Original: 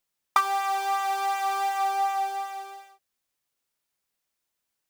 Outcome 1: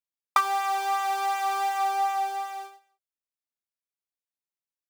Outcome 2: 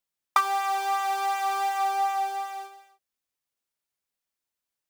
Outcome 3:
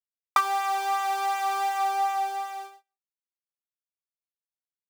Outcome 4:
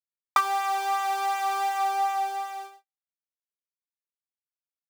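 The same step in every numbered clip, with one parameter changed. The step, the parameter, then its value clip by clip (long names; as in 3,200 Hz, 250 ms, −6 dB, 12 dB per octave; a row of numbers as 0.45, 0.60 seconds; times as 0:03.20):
noise gate, range: −18, −6, −36, −52 decibels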